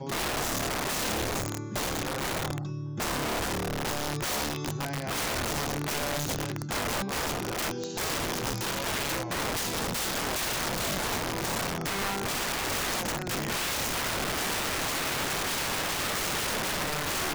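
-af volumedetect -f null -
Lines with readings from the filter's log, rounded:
mean_volume: -30.8 dB
max_volume: -25.5 dB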